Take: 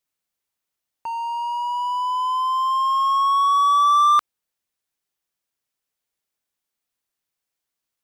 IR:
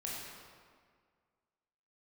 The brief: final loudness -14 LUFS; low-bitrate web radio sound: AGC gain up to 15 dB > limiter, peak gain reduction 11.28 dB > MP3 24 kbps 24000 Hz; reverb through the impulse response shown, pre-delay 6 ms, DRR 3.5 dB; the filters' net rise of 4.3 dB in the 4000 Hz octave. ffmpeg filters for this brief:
-filter_complex "[0:a]equalizer=f=4k:t=o:g=5.5,asplit=2[a][b];[1:a]atrim=start_sample=2205,adelay=6[c];[b][c]afir=irnorm=-1:irlink=0,volume=-4.5dB[d];[a][d]amix=inputs=2:normalize=0,dynaudnorm=m=15dB,alimiter=limit=-15dB:level=0:latency=1,volume=8dB" -ar 24000 -c:a libmp3lame -b:a 24k

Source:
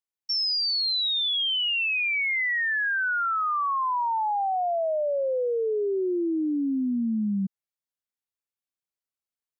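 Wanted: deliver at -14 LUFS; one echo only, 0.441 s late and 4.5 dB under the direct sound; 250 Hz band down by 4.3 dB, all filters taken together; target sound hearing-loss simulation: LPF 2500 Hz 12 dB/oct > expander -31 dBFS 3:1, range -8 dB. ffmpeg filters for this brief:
-af "lowpass=2.5k,equalizer=f=250:t=o:g=-5.5,aecho=1:1:441:0.596,agate=range=-8dB:threshold=-31dB:ratio=3,volume=12dB"

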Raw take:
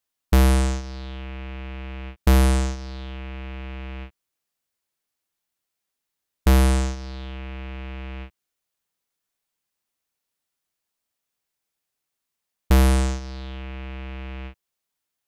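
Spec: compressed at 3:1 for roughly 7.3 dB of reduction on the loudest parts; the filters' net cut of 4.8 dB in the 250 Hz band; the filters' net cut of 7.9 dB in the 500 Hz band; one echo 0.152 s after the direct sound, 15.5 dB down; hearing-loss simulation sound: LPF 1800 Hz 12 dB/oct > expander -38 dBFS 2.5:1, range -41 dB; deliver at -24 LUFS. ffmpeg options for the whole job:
-af "equalizer=f=250:t=o:g=-5,equalizer=f=500:t=o:g=-8.5,acompressor=threshold=-24dB:ratio=3,lowpass=1.8k,aecho=1:1:152:0.168,agate=range=-41dB:threshold=-38dB:ratio=2.5,volume=7dB"

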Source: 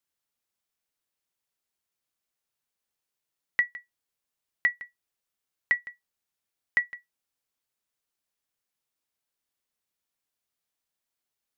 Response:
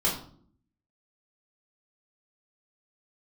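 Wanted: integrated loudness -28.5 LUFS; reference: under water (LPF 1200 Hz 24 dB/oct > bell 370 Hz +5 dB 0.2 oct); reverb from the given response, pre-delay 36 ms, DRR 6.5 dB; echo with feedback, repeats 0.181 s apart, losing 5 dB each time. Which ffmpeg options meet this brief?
-filter_complex "[0:a]aecho=1:1:181|362|543|724|905|1086|1267:0.562|0.315|0.176|0.0988|0.0553|0.031|0.0173,asplit=2[a][b];[1:a]atrim=start_sample=2205,adelay=36[c];[b][c]afir=irnorm=-1:irlink=0,volume=-17dB[d];[a][d]amix=inputs=2:normalize=0,lowpass=f=1.2k:w=0.5412,lowpass=f=1.2k:w=1.3066,equalizer=f=370:t=o:w=0.2:g=5,volume=18dB"

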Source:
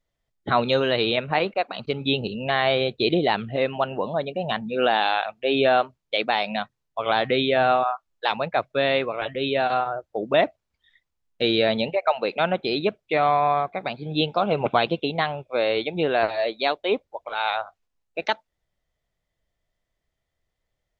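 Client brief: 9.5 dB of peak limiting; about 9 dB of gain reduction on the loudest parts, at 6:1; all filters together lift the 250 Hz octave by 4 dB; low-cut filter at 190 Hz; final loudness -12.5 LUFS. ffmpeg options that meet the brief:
-af "highpass=190,equalizer=f=250:t=o:g=6.5,acompressor=threshold=-24dB:ratio=6,volume=19.5dB,alimiter=limit=-0.5dB:level=0:latency=1"

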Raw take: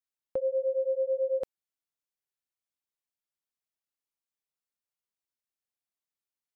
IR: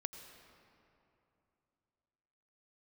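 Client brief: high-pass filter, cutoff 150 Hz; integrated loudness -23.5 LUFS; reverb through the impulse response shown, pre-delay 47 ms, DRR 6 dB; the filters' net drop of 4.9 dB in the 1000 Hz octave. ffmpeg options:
-filter_complex "[0:a]highpass=150,equalizer=f=1k:t=o:g=-7.5,asplit=2[a][b];[1:a]atrim=start_sample=2205,adelay=47[c];[b][c]afir=irnorm=-1:irlink=0,volume=-4dB[d];[a][d]amix=inputs=2:normalize=0,volume=8dB"

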